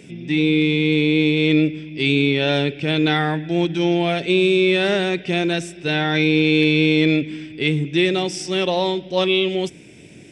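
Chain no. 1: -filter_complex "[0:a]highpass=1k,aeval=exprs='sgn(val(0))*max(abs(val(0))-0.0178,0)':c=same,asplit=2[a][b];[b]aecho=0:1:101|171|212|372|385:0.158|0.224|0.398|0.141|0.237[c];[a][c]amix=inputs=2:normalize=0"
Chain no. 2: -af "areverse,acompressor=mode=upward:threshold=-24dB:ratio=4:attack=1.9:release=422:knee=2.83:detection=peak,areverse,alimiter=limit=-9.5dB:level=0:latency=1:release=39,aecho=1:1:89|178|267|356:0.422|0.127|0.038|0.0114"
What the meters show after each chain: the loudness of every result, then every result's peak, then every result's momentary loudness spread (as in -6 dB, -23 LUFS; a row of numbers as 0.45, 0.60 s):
-24.5, -20.0 LUFS; -7.5, -6.5 dBFS; 9, 6 LU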